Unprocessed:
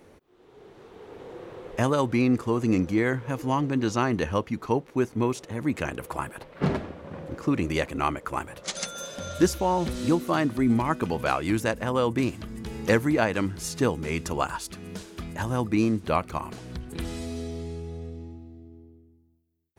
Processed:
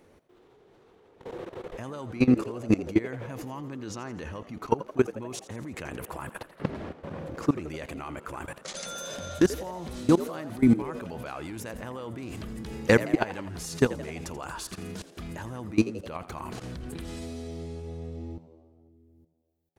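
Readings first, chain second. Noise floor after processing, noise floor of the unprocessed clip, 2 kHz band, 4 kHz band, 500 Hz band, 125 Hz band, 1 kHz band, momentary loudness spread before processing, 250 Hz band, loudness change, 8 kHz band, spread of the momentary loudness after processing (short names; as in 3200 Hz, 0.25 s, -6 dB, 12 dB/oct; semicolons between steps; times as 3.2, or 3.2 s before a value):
-59 dBFS, -56 dBFS, -4.0 dB, -4.5 dB, -3.0 dB, -4.5 dB, -8.0 dB, 15 LU, -2.0 dB, -3.5 dB, -3.5 dB, 16 LU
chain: level quantiser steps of 21 dB; on a send: frequency-shifting echo 84 ms, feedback 60%, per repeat +80 Hz, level -15.5 dB; on the sum: gain +4.5 dB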